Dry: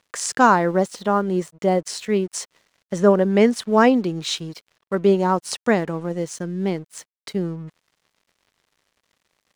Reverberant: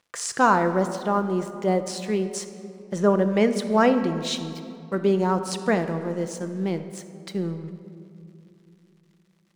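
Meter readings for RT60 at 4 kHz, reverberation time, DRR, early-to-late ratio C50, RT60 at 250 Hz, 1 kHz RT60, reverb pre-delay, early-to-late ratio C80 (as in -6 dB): 1.4 s, 2.8 s, 8.0 dB, 10.0 dB, 3.8 s, 2.6 s, 6 ms, 11.0 dB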